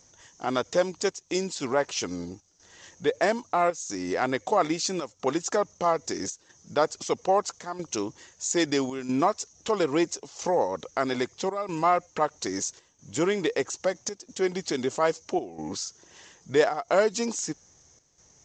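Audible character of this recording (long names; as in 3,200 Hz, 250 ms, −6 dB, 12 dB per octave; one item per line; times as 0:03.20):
chopped level 0.77 Hz, depth 65%, duty 85%
G.722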